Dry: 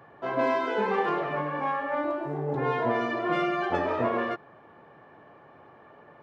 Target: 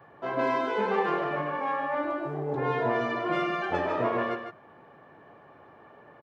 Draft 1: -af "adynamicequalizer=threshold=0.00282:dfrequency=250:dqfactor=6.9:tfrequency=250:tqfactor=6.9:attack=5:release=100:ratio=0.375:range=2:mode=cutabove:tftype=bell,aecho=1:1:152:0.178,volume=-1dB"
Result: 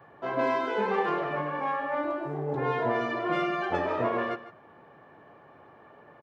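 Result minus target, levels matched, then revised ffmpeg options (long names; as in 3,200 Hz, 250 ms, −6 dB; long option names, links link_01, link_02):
echo-to-direct −7.5 dB
-af "adynamicequalizer=threshold=0.00282:dfrequency=250:dqfactor=6.9:tfrequency=250:tqfactor=6.9:attack=5:release=100:ratio=0.375:range=2:mode=cutabove:tftype=bell,aecho=1:1:152:0.422,volume=-1dB"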